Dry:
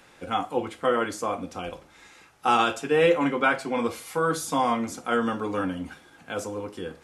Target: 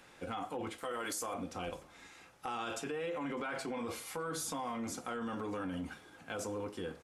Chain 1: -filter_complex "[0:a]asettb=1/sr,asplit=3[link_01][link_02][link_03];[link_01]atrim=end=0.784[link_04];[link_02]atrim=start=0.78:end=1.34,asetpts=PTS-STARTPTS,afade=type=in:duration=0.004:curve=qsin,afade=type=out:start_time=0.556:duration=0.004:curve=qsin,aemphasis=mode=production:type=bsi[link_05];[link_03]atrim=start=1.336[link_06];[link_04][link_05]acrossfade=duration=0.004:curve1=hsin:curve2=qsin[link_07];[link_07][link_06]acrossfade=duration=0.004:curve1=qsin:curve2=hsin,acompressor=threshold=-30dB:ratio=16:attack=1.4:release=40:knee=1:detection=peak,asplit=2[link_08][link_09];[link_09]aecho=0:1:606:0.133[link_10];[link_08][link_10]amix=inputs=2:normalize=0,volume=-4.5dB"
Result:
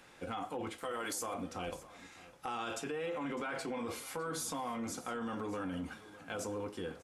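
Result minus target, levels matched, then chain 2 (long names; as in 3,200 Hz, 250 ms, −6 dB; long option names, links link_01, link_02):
echo-to-direct +9.5 dB
-filter_complex "[0:a]asettb=1/sr,asplit=3[link_01][link_02][link_03];[link_01]atrim=end=0.784[link_04];[link_02]atrim=start=0.78:end=1.34,asetpts=PTS-STARTPTS,afade=type=in:duration=0.004:curve=qsin,afade=type=out:start_time=0.556:duration=0.004:curve=qsin,aemphasis=mode=production:type=bsi[link_05];[link_03]atrim=start=1.336[link_06];[link_04][link_05]acrossfade=duration=0.004:curve1=hsin:curve2=qsin[link_07];[link_07][link_06]acrossfade=duration=0.004:curve1=qsin:curve2=hsin,acompressor=threshold=-30dB:ratio=16:attack=1.4:release=40:knee=1:detection=peak,asplit=2[link_08][link_09];[link_09]aecho=0:1:606:0.0447[link_10];[link_08][link_10]amix=inputs=2:normalize=0,volume=-4.5dB"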